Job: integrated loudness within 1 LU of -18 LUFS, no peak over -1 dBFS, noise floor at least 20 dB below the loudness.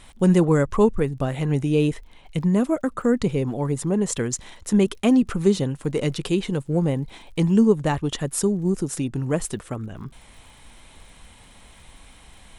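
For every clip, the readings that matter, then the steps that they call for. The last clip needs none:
ticks 50/s; loudness -22.5 LUFS; peak -6.0 dBFS; loudness target -18.0 LUFS
-> de-click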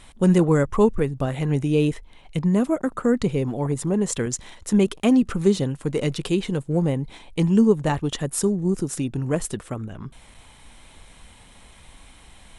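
ticks 0.079/s; loudness -22.5 LUFS; peak -6.0 dBFS; loudness target -18.0 LUFS
-> gain +4.5 dB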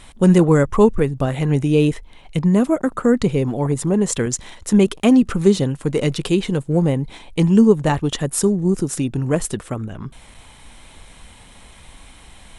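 loudness -18.0 LUFS; peak -1.5 dBFS; noise floor -45 dBFS

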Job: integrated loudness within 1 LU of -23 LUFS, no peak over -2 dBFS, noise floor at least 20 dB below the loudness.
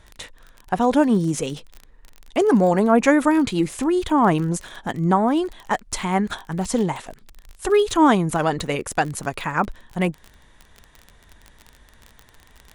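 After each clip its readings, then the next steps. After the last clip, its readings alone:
ticks 28/s; loudness -21.0 LUFS; peak -2.5 dBFS; loudness target -23.0 LUFS
-> de-click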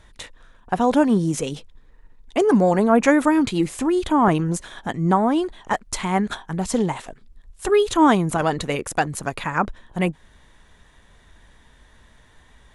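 ticks 0/s; loudness -21.0 LUFS; peak -2.5 dBFS; loudness target -23.0 LUFS
-> gain -2 dB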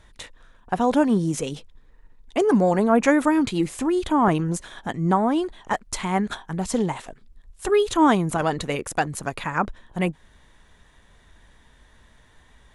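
loudness -23.0 LUFS; peak -4.5 dBFS; noise floor -56 dBFS

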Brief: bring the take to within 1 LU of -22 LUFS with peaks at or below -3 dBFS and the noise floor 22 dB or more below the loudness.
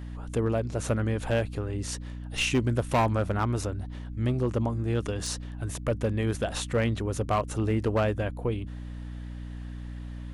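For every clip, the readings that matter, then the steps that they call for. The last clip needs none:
clipped 0.8%; flat tops at -18.5 dBFS; hum 60 Hz; harmonics up to 300 Hz; hum level -35 dBFS; loudness -29.0 LUFS; peak -18.5 dBFS; loudness target -22.0 LUFS
-> clip repair -18.5 dBFS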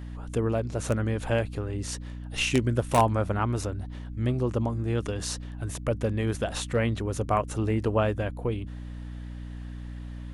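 clipped 0.0%; hum 60 Hz; harmonics up to 300 Hz; hum level -35 dBFS
-> notches 60/120/180/240/300 Hz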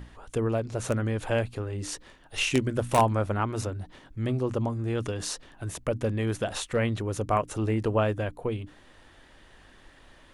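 hum none; loudness -29.0 LUFS; peak -9.0 dBFS; loudness target -22.0 LUFS
-> gain +7 dB; limiter -3 dBFS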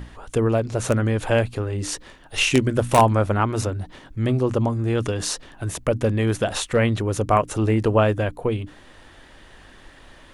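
loudness -22.0 LUFS; peak -3.0 dBFS; noise floor -48 dBFS

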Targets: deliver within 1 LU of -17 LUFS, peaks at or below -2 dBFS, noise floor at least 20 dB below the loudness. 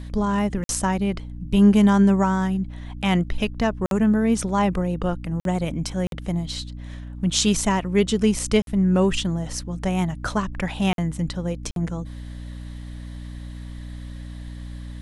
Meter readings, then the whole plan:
dropouts 7; longest dropout 52 ms; hum 60 Hz; harmonics up to 300 Hz; hum level -33 dBFS; loudness -22.5 LUFS; peak -3.5 dBFS; loudness target -17.0 LUFS
-> interpolate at 0.64/3.86/5.4/6.07/8.62/10.93/11.71, 52 ms; notches 60/120/180/240/300 Hz; gain +5.5 dB; limiter -2 dBFS

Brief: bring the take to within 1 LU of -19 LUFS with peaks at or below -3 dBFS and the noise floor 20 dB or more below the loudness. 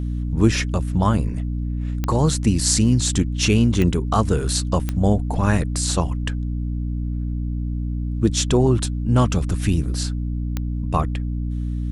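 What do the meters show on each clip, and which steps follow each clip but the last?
clicks 4; hum 60 Hz; harmonics up to 300 Hz; hum level -22 dBFS; loudness -21.5 LUFS; peak -2.0 dBFS; loudness target -19.0 LUFS
-> de-click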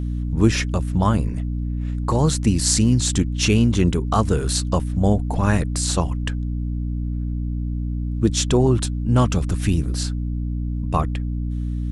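clicks 0; hum 60 Hz; harmonics up to 300 Hz; hum level -22 dBFS
-> notches 60/120/180/240/300 Hz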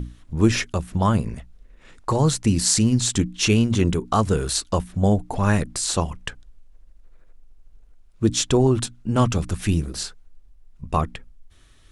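hum none; loudness -22.0 LUFS; peak -1.5 dBFS; loudness target -19.0 LUFS
-> gain +3 dB; limiter -3 dBFS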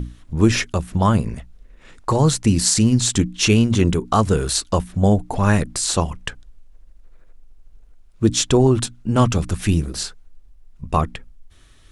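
loudness -19.0 LUFS; peak -3.0 dBFS; noise floor -48 dBFS

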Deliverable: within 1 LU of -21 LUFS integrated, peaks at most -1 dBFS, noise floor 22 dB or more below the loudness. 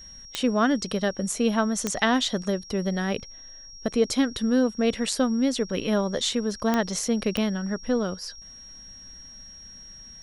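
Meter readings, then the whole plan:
clicks 4; steady tone 5600 Hz; tone level -43 dBFS; loudness -25.5 LUFS; peak -7.0 dBFS; loudness target -21.0 LUFS
-> de-click; notch 5600 Hz, Q 30; gain +4.5 dB

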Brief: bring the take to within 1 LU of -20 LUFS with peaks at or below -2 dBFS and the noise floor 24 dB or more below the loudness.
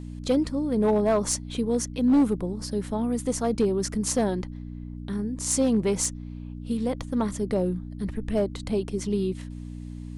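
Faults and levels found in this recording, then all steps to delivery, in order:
clipped 0.7%; flat tops at -15.5 dBFS; hum 60 Hz; harmonics up to 300 Hz; hum level -35 dBFS; loudness -26.5 LUFS; peak -15.5 dBFS; loudness target -20.0 LUFS
-> clip repair -15.5 dBFS; de-hum 60 Hz, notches 5; gain +6.5 dB

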